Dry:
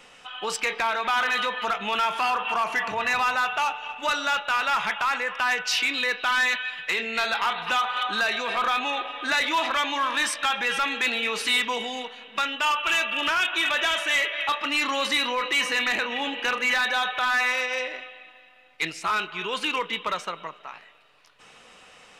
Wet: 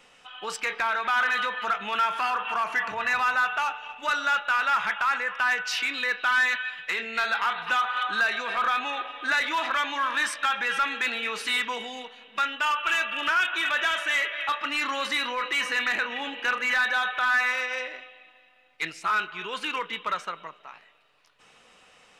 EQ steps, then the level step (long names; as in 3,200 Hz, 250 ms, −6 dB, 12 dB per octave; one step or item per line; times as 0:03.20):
dynamic equaliser 1,500 Hz, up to +8 dB, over −39 dBFS, Q 1.7
−5.5 dB